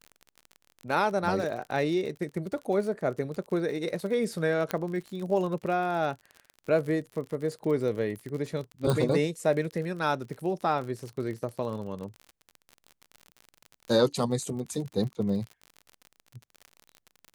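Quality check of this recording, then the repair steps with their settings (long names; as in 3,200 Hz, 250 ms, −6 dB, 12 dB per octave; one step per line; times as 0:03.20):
surface crackle 44 per second −35 dBFS
0:04.71: click −14 dBFS
0:08.90: click −15 dBFS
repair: click removal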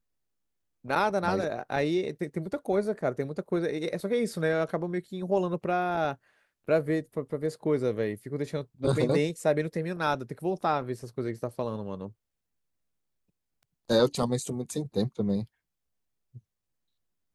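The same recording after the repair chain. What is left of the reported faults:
none of them is left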